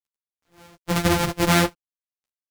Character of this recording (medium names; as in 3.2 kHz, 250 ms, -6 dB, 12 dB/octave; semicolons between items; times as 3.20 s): a buzz of ramps at a fixed pitch in blocks of 256 samples; tremolo triangle 1.9 Hz, depth 55%; a quantiser's noise floor 12-bit, dither none; a shimmering, thickened sound